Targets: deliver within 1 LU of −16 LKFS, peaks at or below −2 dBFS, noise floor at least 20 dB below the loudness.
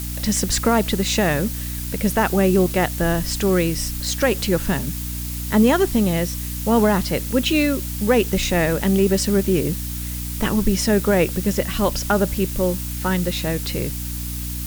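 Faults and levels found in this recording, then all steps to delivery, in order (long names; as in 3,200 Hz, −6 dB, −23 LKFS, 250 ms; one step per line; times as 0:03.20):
mains hum 60 Hz; hum harmonics up to 300 Hz; level of the hum −27 dBFS; background noise floor −28 dBFS; target noise floor −41 dBFS; integrated loudness −20.5 LKFS; sample peak −5.0 dBFS; target loudness −16.0 LKFS
→ hum removal 60 Hz, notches 5
broadband denoise 13 dB, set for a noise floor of −28 dBFS
level +4.5 dB
brickwall limiter −2 dBFS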